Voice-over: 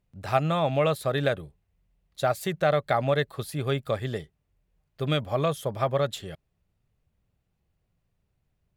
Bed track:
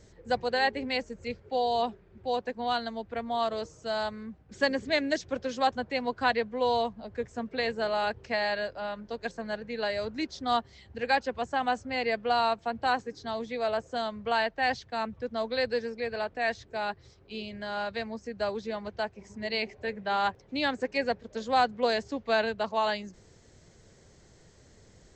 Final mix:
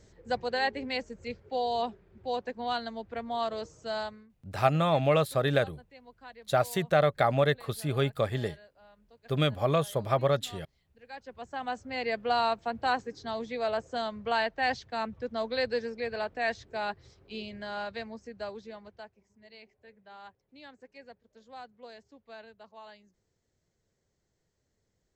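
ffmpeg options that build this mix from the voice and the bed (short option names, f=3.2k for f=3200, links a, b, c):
-filter_complex "[0:a]adelay=4300,volume=-0.5dB[a];[1:a]volume=19dB,afade=t=out:st=3.98:d=0.31:silence=0.1,afade=t=in:st=11.08:d=1.21:silence=0.0841395,afade=t=out:st=17.33:d=1.94:silence=0.0944061[b];[a][b]amix=inputs=2:normalize=0"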